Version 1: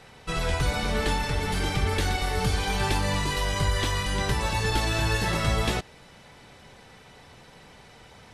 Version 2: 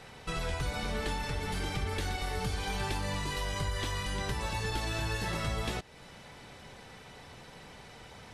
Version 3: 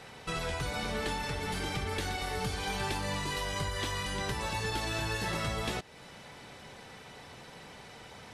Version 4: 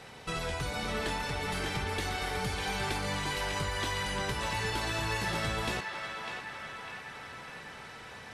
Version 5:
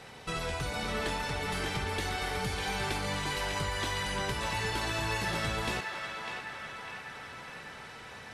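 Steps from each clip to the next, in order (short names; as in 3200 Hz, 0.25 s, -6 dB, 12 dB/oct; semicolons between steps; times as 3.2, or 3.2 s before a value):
compressor 2:1, threshold -37 dBFS, peak gain reduction 10 dB
low shelf 69 Hz -10 dB; gain +1.5 dB
narrowing echo 0.601 s, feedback 71%, band-pass 1600 Hz, level -3 dB
thinning echo 70 ms, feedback 79%, level -16 dB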